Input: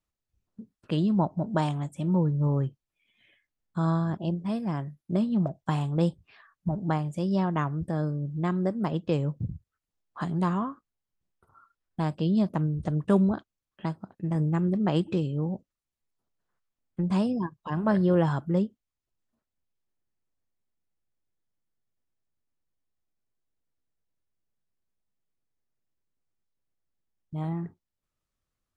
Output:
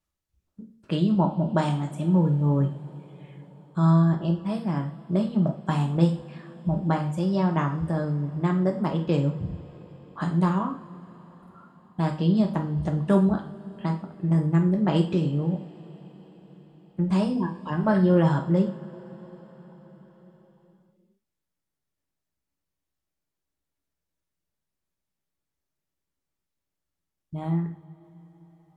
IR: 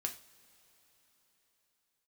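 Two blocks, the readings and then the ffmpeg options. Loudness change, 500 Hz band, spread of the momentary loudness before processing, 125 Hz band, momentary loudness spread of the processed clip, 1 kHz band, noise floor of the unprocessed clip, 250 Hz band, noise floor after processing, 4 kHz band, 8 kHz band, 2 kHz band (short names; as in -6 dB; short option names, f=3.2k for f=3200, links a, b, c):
+3.5 dB, +2.5 dB, 11 LU, +4.0 dB, 18 LU, +3.0 dB, under -85 dBFS, +3.5 dB, -85 dBFS, +3.0 dB, n/a, +3.0 dB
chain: -filter_complex "[1:a]atrim=start_sample=2205,asetrate=34398,aresample=44100[a];[0:a][a]afir=irnorm=-1:irlink=0,volume=1.5dB"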